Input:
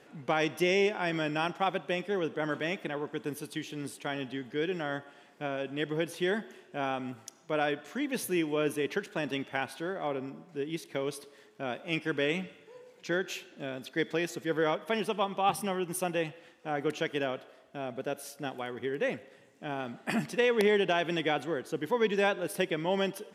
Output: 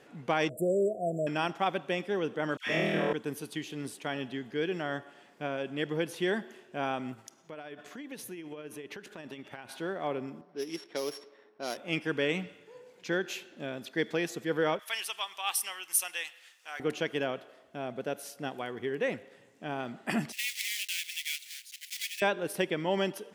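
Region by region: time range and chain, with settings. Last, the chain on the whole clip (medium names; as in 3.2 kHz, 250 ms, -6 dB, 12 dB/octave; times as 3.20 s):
0.49–1.27 s: brick-wall FIR band-stop 730–7100 Hz + peaking EQ 2.5 kHz +8.5 dB 1.9 oct + comb 1.7 ms, depth 54%
2.57–3.13 s: phase dispersion lows, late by 98 ms, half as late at 1.2 kHz + flutter echo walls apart 4.3 m, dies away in 1.3 s
7.13–9.69 s: compression 12:1, threshold -37 dBFS + tremolo 15 Hz, depth 35%
10.41–11.77 s: sorted samples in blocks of 8 samples + high-pass 300 Hz + level-controlled noise filter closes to 1.5 kHz, open at -30 dBFS
14.79–16.80 s: high-pass 1.5 kHz + treble shelf 4.1 kHz +12 dB
20.32–22.22 s: block-companded coder 3-bit + elliptic high-pass 2.2 kHz, stop band 60 dB
whole clip: none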